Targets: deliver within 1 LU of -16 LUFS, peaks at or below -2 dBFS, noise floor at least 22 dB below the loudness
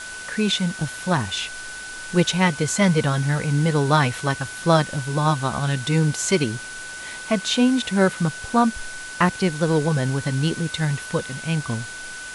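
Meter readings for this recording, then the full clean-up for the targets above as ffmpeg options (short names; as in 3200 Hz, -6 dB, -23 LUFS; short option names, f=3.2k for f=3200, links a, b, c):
steady tone 1500 Hz; tone level -34 dBFS; noise floor -35 dBFS; noise floor target -44 dBFS; loudness -22.0 LUFS; peak -4.0 dBFS; loudness target -16.0 LUFS
-> -af "bandreject=f=1.5k:w=30"
-af "afftdn=nr=9:nf=-35"
-af "volume=6dB,alimiter=limit=-2dB:level=0:latency=1"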